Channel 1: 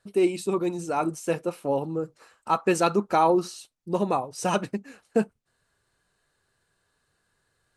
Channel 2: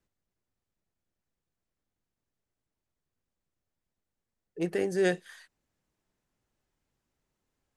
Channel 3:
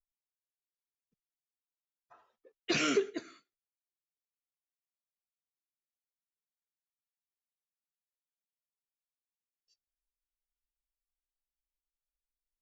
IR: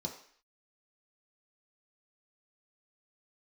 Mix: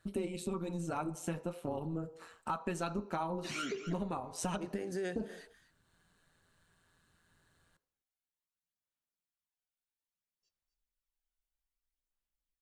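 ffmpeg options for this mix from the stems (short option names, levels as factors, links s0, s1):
-filter_complex "[0:a]tremolo=f=170:d=0.621,volume=1.33,asplit=2[s0][s1];[s1]volume=0.316[s2];[1:a]acompressor=threshold=0.0282:ratio=2,volume=1.12,asplit=3[s3][s4][s5];[s4]volume=0.133[s6];[2:a]aphaser=in_gain=1:out_gain=1:delay=1.4:decay=0.55:speed=0.61:type=sinusoidal,adelay=750,volume=0.631,asplit=3[s7][s8][s9];[s8]volume=0.2[s10];[s9]volume=0.178[s11];[s5]apad=whole_len=342606[s12];[s0][s12]sidechaincompress=threshold=0.00316:ratio=8:attack=16:release=528[s13];[3:a]atrim=start_sample=2205[s14];[s2][s10]amix=inputs=2:normalize=0[s15];[s15][s14]afir=irnorm=-1:irlink=0[s16];[s6][s11]amix=inputs=2:normalize=0,aecho=0:1:249:1[s17];[s13][s3][s7][s16][s17]amix=inputs=5:normalize=0,acompressor=threshold=0.0178:ratio=5"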